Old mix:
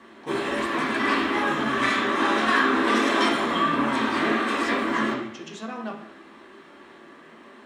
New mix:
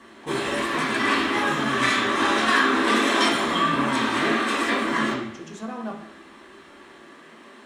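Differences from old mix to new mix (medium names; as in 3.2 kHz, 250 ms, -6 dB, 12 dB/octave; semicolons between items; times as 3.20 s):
speech: remove frequency weighting D; master: add peaking EQ 11 kHz +8 dB 2.6 oct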